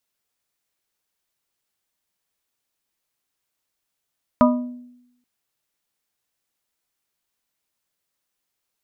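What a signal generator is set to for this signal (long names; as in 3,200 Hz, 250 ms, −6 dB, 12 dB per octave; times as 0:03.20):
struck glass plate, length 0.83 s, lowest mode 246 Hz, modes 4, decay 0.86 s, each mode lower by 2 dB, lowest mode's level −11 dB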